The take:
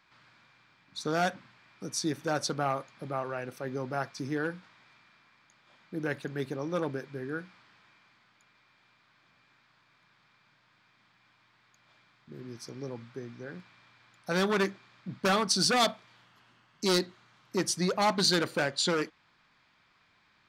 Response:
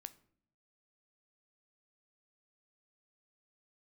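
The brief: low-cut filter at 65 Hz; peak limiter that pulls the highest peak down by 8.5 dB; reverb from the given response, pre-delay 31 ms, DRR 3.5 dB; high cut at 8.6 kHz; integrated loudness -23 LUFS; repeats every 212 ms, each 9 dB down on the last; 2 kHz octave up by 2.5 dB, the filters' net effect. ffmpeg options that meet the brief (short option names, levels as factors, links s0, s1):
-filter_complex "[0:a]highpass=65,lowpass=8600,equalizer=f=2000:t=o:g=3.5,alimiter=limit=0.0794:level=0:latency=1,aecho=1:1:212|424|636|848:0.355|0.124|0.0435|0.0152,asplit=2[s0][s1];[1:a]atrim=start_sample=2205,adelay=31[s2];[s1][s2]afir=irnorm=-1:irlink=0,volume=1.26[s3];[s0][s3]amix=inputs=2:normalize=0,volume=3.16"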